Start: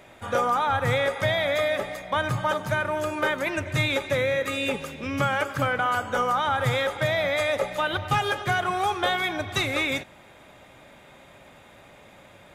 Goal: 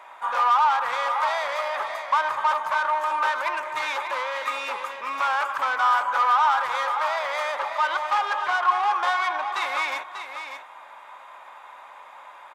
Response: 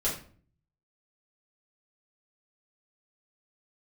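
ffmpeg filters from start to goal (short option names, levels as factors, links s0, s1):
-filter_complex "[0:a]asettb=1/sr,asplit=3[s0][s1][s2];[s0]atrim=end=7.584[s3];[s1]atrim=start=7.58:end=9.62,asetpts=PTS-STARTPTS,afade=t=in:d=0.004:c=qsin,afade=t=out:st=2.036:d=0.004:c=qsin,acrossover=split=6000[s4][s5];[s5]acompressor=threshold=0.00126:ratio=4:attack=1:release=60[s6];[s4][s6]amix=inputs=2:normalize=0[s7];[s2]atrim=start=9.616[s8];[s3][s7]acrossfade=d=0.004:c1=hsin:c2=qsin[s9];[s9][s8]acrossfade=d=0.004:c1=qsin:c2=hsin,highshelf=f=2600:g=-9.5,asoftclip=type=tanh:threshold=0.0447,highpass=f=1000:t=q:w=4.9,aecho=1:1:592:0.376,volume=1.5"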